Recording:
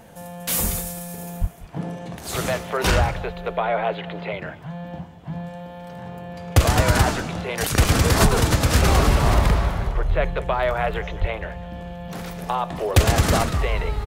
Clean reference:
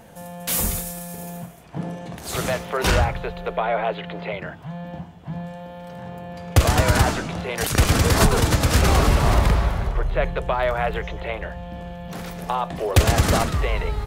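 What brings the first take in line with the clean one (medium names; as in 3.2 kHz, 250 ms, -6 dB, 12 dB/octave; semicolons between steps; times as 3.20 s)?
1.40–1.52 s: high-pass 140 Hz 24 dB/octave; 10.08–10.20 s: high-pass 140 Hz 24 dB/octave; 11.20–11.32 s: high-pass 140 Hz 24 dB/octave; inverse comb 195 ms -18.5 dB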